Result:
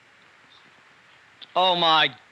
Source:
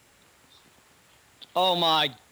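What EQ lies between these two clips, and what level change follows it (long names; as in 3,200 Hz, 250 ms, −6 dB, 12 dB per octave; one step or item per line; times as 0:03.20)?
high-pass filter 91 Hz 24 dB per octave
low-pass filter 4,900 Hz 12 dB per octave
parametric band 1,800 Hz +9.5 dB 1.7 octaves
0.0 dB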